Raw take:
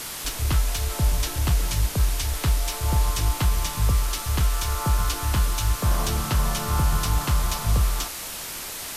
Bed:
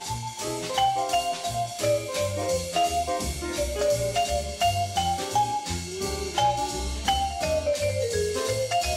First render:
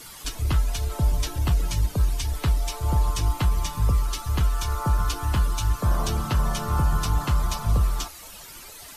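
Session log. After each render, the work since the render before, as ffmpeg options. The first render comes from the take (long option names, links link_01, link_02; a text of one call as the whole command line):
ffmpeg -i in.wav -af "afftdn=noise_reduction=13:noise_floor=-34" out.wav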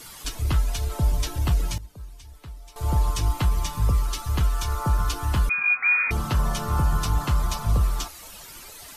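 ffmpeg -i in.wav -filter_complex "[0:a]asettb=1/sr,asplit=3[link_01][link_02][link_03];[link_01]atrim=end=5.494[link_04];[link_02]atrim=start=5.49:end=6.11,asetpts=PTS-STARTPTS,afade=type=in:duration=0.004:curve=qsin,afade=type=out:start_time=0.616:duration=0.004:curve=qsin,lowpass=frequency=2100:width_type=q:width=0.5098,lowpass=frequency=2100:width_type=q:width=0.6013,lowpass=frequency=2100:width_type=q:width=0.9,lowpass=frequency=2100:width_type=q:width=2.563,afreqshift=-2500[link_05];[link_03]atrim=start=6.106[link_06];[link_04][link_05]acrossfade=duration=0.004:curve1=hsin:curve2=qsin[link_07];[link_07][link_06]acrossfade=duration=0.004:curve1=qsin:curve2=hsin,asplit=3[link_08][link_09][link_10];[link_08]atrim=end=1.78,asetpts=PTS-STARTPTS,afade=type=out:start_time=1.57:duration=0.21:curve=log:silence=0.125893[link_11];[link_09]atrim=start=1.78:end=2.76,asetpts=PTS-STARTPTS,volume=-18dB[link_12];[link_10]atrim=start=2.76,asetpts=PTS-STARTPTS,afade=type=in:duration=0.21:curve=log:silence=0.125893[link_13];[link_11][link_12][link_13]concat=n=3:v=0:a=1" out.wav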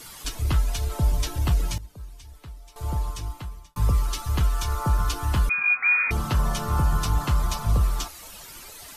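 ffmpeg -i in.wav -filter_complex "[0:a]asplit=2[link_01][link_02];[link_01]atrim=end=3.76,asetpts=PTS-STARTPTS,afade=type=out:start_time=2.33:duration=1.43[link_03];[link_02]atrim=start=3.76,asetpts=PTS-STARTPTS,afade=type=in:duration=0.004:curve=hsin[link_04];[link_03][link_04]concat=n=2:v=0:a=1" out.wav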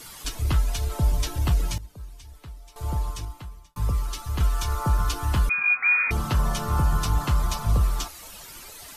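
ffmpeg -i in.wav -filter_complex "[0:a]asplit=3[link_01][link_02][link_03];[link_01]atrim=end=3.252[link_04];[link_02]atrim=start=3.248:end=4.402,asetpts=PTS-STARTPTS,volume=-3.5dB[link_05];[link_03]atrim=start=4.398[link_06];[link_04][link_05]acrossfade=duration=0.004:curve1=hsin:curve2=hsin[link_07];[link_07][link_06]acrossfade=duration=0.004:curve1=hsin:curve2=hsin" out.wav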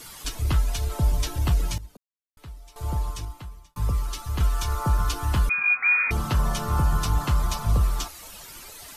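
ffmpeg -i in.wav -filter_complex "[0:a]asplit=3[link_01][link_02][link_03];[link_01]atrim=end=1.97,asetpts=PTS-STARTPTS,afade=type=out:start_time=1.966:duration=0.004:curve=hsin[link_04];[link_02]atrim=start=1.97:end=2.37,asetpts=PTS-STARTPTS,volume=0[link_05];[link_03]atrim=start=2.37,asetpts=PTS-STARTPTS,afade=type=in:duration=0.004:curve=hsin[link_06];[link_04][link_05][link_06]concat=n=3:v=0:a=1" out.wav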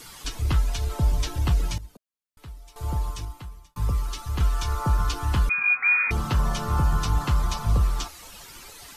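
ffmpeg -i in.wav -filter_complex "[0:a]acrossover=split=7700[link_01][link_02];[link_02]acompressor=threshold=-48dB:ratio=4:attack=1:release=60[link_03];[link_01][link_03]amix=inputs=2:normalize=0,bandreject=frequency=630:width=12" out.wav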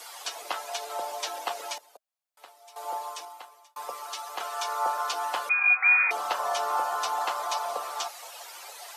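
ffmpeg -i in.wav -af "highpass=frequency=520:width=0.5412,highpass=frequency=520:width=1.3066,equalizer=frequency=700:width_type=o:width=0.81:gain=9.5" out.wav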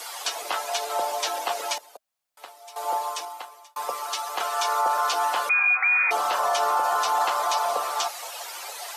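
ffmpeg -i in.wav -af "alimiter=limit=-21.5dB:level=0:latency=1:release=19,acontrast=82" out.wav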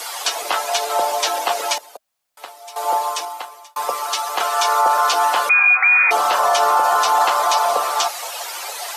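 ffmpeg -i in.wav -af "volume=7.5dB" out.wav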